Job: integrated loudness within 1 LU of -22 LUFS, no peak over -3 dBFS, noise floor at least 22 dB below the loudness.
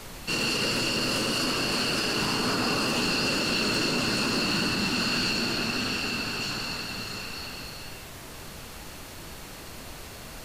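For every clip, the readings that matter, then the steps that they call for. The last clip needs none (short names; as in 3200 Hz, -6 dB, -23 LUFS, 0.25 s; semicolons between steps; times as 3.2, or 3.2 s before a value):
clipped 0.1%; flat tops at -18.5 dBFS; noise floor -43 dBFS; noise floor target -48 dBFS; loudness -26.0 LUFS; peak -18.5 dBFS; loudness target -22.0 LUFS
-> clip repair -18.5 dBFS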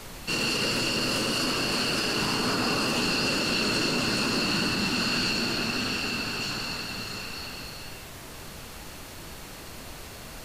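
clipped 0.0%; noise floor -43 dBFS; noise floor target -48 dBFS
-> noise print and reduce 6 dB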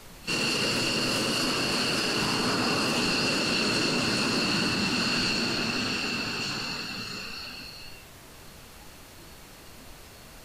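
noise floor -48 dBFS; loudness -26.0 LUFS; peak -12.5 dBFS; loudness target -22.0 LUFS
-> gain +4 dB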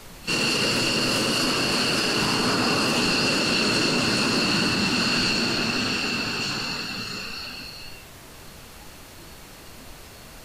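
loudness -22.0 LUFS; peak -8.5 dBFS; noise floor -44 dBFS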